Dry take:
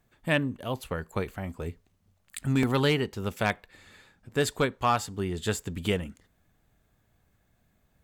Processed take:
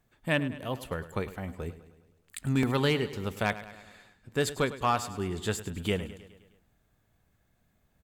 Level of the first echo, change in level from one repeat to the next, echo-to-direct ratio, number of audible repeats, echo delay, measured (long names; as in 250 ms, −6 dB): −15.0 dB, −4.5 dB, −13.0 dB, 5, 104 ms